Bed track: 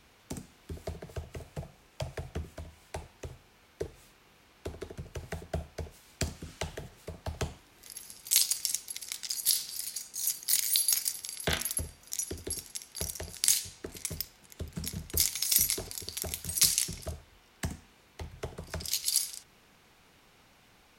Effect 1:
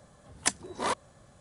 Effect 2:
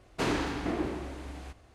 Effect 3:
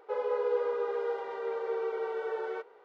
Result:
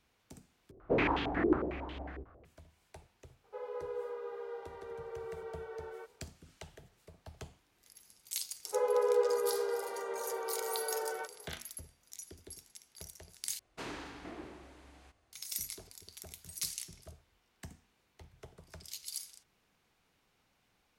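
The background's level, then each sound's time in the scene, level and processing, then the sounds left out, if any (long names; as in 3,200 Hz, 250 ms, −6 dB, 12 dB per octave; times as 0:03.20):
bed track −13.5 dB
0:00.71: overwrite with 2 −3 dB + low-pass on a step sequencer 11 Hz 400–3,200 Hz
0:03.44: mix in 3 −10.5 dB
0:08.64: mix in 3 −2 dB, fades 0.02 s + double-tracking delay 12 ms −4.5 dB
0:13.59: overwrite with 2 −11 dB + low-shelf EQ 490 Hz −6.5 dB
not used: 1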